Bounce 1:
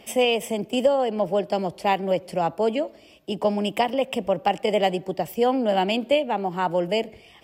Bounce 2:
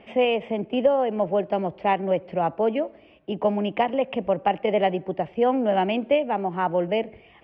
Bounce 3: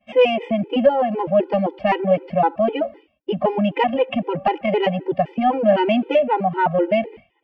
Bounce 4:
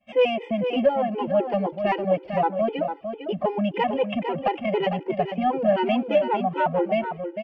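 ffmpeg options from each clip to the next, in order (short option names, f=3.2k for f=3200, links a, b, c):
-af "lowpass=f=2.6k:w=0.5412,lowpass=f=2.6k:w=1.3066"
-af "acontrast=82,agate=range=-33dB:threshold=-32dB:ratio=3:detection=peak,afftfilt=real='re*gt(sin(2*PI*3.9*pts/sr)*(1-2*mod(floor(b*sr/1024/260),2)),0)':imag='im*gt(sin(2*PI*3.9*pts/sr)*(1-2*mod(floor(b*sr/1024/260),2)),0)':win_size=1024:overlap=0.75,volume=1.5dB"
-af "aecho=1:1:452:0.398,volume=-5dB"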